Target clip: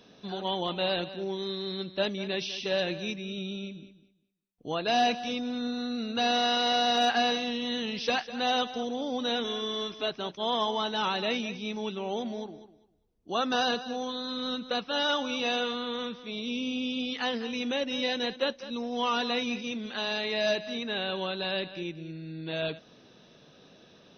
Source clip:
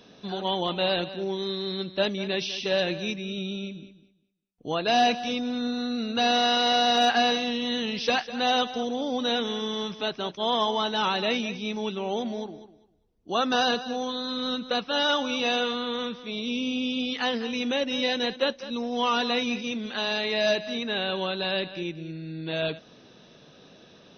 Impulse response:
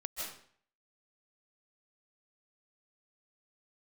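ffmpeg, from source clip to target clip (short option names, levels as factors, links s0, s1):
-filter_complex "[0:a]asettb=1/sr,asplit=3[s0][s1][s2];[s0]atrim=end=9.444[s3];[s1]atrim=start=9.44:end=10.1,asetpts=PTS-STARTPTS,afade=t=in:d=0.004:c=qsin,afade=t=out:st=0.656:d=0.004:c=qsin,aecho=1:1:2.9:0.59,atrim=end_sample=29106[s4];[s2]atrim=start=10.096[s5];[s3][s4]acrossfade=d=0.004:c1=hsin:c2=qsin[s6];[s6][s5]acrossfade=d=0.004:c1=qsin:c2=hsin,volume=0.668"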